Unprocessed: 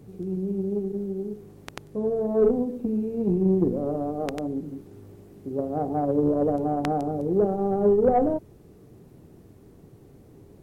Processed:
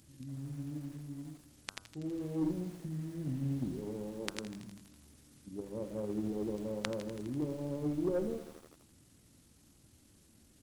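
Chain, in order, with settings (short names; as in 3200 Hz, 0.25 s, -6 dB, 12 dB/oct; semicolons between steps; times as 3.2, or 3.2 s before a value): pitch shift -5.5 st; tilt shelf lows -10 dB, about 1400 Hz; de-hum 97.54 Hz, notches 16; lo-fi delay 82 ms, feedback 80%, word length 7-bit, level -14.5 dB; gain -4.5 dB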